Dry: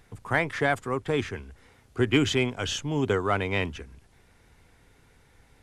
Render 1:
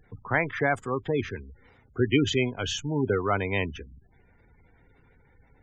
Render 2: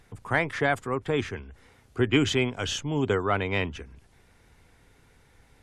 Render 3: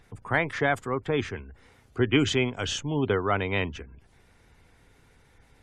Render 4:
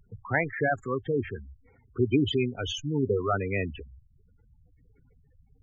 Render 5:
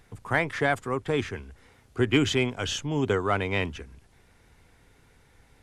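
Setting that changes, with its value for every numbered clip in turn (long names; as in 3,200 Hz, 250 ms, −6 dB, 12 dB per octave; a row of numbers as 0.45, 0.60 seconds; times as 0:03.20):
gate on every frequency bin, under each frame's peak: −20, −45, −35, −10, −60 decibels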